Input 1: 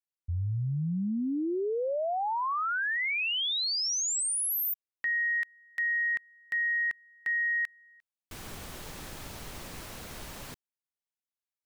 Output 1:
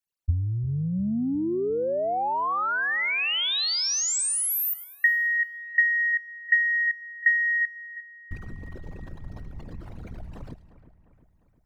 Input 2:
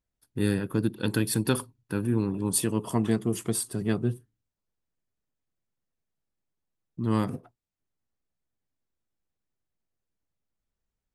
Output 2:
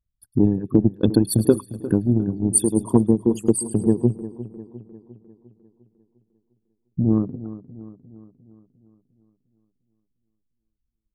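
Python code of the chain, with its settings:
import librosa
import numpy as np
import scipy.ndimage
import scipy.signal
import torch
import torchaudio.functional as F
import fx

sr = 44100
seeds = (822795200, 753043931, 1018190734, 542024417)

y = fx.envelope_sharpen(x, sr, power=3.0)
y = fx.transient(y, sr, attack_db=9, sustain_db=-6)
y = fx.echo_split(y, sr, split_hz=2500.0, low_ms=352, high_ms=106, feedback_pct=52, wet_db=-15.0)
y = y * librosa.db_to_amplitude(4.0)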